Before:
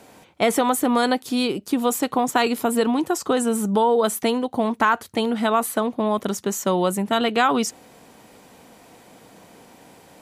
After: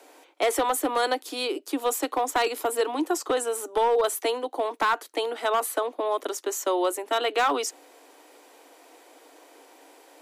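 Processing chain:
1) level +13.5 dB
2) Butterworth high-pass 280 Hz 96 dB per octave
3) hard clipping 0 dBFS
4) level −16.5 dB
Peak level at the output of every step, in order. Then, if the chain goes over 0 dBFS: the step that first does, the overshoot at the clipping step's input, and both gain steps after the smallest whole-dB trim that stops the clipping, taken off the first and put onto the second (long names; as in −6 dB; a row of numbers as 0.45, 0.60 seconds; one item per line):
+8.5, +7.5, 0.0, −16.5 dBFS
step 1, 7.5 dB
step 1 +5.5 dB, step 4 −8.5 dB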